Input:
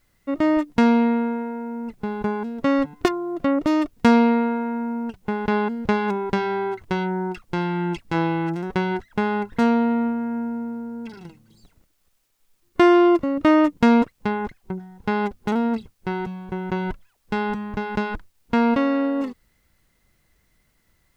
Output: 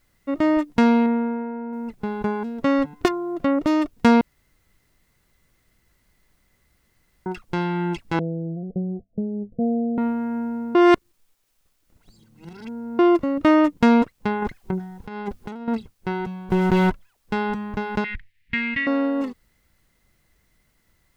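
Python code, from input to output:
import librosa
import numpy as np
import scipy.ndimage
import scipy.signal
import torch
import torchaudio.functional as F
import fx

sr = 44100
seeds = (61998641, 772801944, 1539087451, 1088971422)

y = fx.air_absorb(x, sr, metres=370.0, at=(1.06, 1.73))
y = fx.cheby_ripple(y, sr, hz=710.0, ripple_db=9, at=(8.19, 9.98))
y = fx.over_compress(y, sr, threshold_db=-27.0, ratio=-0.5, at=(14.42, 15.68))
y = fx.leveller(y, sr, passes=3, at=(16.5, 16.9))
y = fx.curve_eq(y, sr, hz=(130.0, 670.0, 1400.0, 1900.0, 6100.0), db=(0, -29, -11, 13, -12), at=(18.04, 18.87))
y = fx.edit(y, sr, fx.room_tone_fill(start_s=4.21, length_s=3.05),
    fx.reverse_span(start_s=10.75, length_s=2.24), tone=tone)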